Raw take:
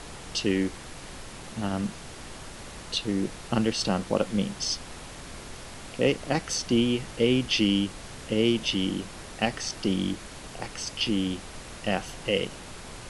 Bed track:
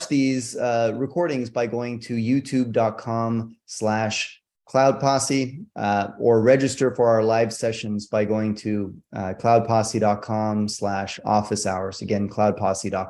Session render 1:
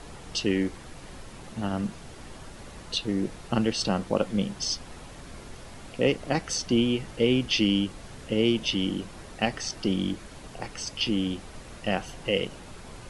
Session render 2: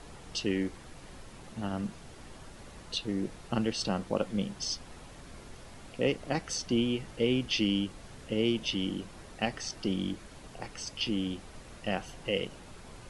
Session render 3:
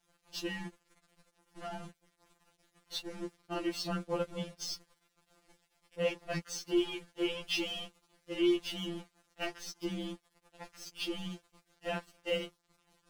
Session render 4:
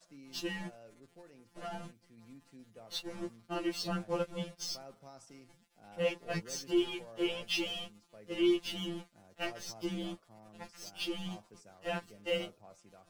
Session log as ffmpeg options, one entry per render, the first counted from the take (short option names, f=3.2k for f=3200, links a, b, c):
-af "afftdn=nr=6:nf=-43"
-af "volume=-5dB"
-af "aeval=exprs='sgn(val(0))*max(abs(val(0))-0.00841,0)':c=same,afftfilt=real='re*2.83*eq(mod(b,8),0)':imag='im*2.83*eq(mod(b,8),0)':win_size=2048:overlap=0.75"
-filter_complex "[1:a]volume=-34dB[a];[0:a][a]amix=inputs=2:normalize=0"